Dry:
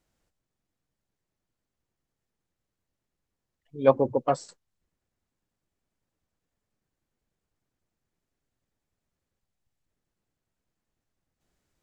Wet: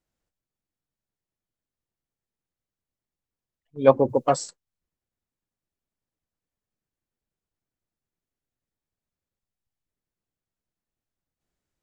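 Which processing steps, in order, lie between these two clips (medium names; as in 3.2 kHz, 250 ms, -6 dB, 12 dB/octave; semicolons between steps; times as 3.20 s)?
gate -41 dBFS, range -11 dB; 4.08–4.48 s: treble shelf 6.1 kHz -> 4.4 kHz +11.5 dB; trim +3.5 dB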